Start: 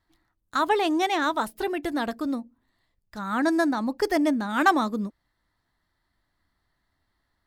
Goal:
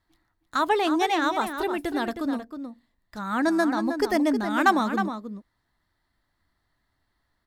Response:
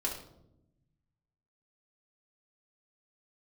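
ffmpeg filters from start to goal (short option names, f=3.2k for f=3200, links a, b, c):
-filter_complex "[0:a]asplit=2[a][b];[b]adelay=314.9,volume=-8dB,highshelf=f=4k:g=-7.08[c];[a][c]amix=inputs=2:normalize=0"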